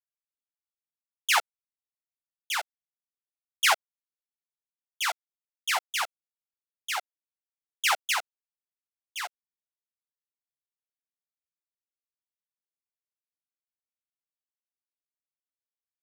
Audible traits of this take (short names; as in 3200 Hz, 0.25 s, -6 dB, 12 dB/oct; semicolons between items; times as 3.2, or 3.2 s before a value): a quantiser's noise floor 12-bit, dither none; random-step tremolo 1.6 Hz, depth 75%; a shimmering, thickened sound